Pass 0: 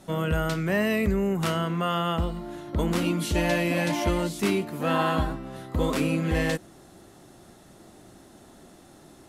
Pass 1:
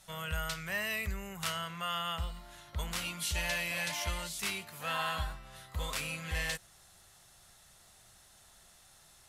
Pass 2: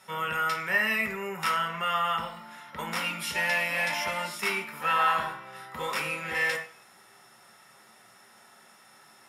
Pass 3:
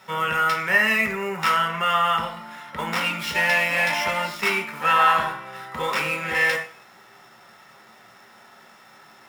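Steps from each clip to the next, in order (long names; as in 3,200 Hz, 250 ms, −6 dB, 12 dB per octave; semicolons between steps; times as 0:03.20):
guitar amp tone stack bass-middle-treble 10-0-10
convolution reverb RT60 0.50 s, pre-delay 3 ms, DRR 2.5 dB
running median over 5 samples; level +7 dB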